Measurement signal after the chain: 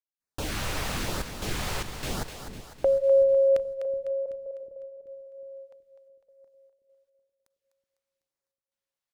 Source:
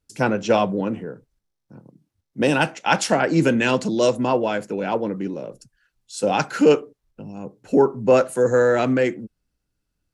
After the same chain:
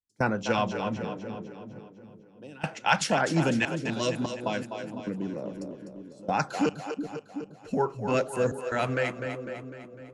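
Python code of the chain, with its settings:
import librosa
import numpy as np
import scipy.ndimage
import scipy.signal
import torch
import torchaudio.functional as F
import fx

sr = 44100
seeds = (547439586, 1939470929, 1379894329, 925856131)

y = fx.filter_lfo_notch(x, sr, shape='sine', hz=0.98, low_hz=220.0, high_hz=3200.0, q=1.4)
y = fx.step_gate(y, sr, bpm=74, pattern='.xxxxx.xx.x.', floor_db=-24.0, edge_ms=4.5)
y = fx.high_shelf(y, sr, hz=8900.0, db=-10.0)
y = fx.echo_split(y, sr, split_hz=400.0, low_ms=373, high_ms=251, feedback_pct=52, wet_db=-8.5)
y = fx.dynamic_eq(y, sr, hz=380.0, q=0.83, threshold_db=-30.0, ratio=4.0, max_db=-7)
y = F.gain(torch.from_numpy(y), -2.5).numpy()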